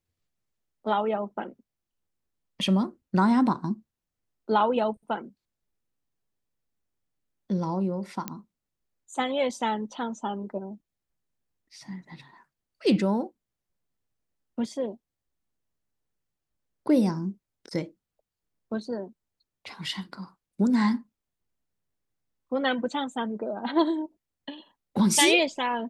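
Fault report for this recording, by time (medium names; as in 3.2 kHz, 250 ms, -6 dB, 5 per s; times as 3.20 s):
8.28 s: pop -15 dBFS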